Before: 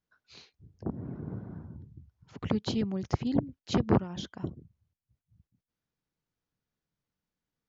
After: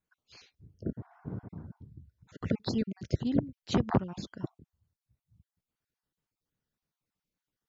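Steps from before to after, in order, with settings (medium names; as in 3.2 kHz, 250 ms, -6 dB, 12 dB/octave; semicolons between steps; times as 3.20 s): random holes in the spectrogram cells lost 27%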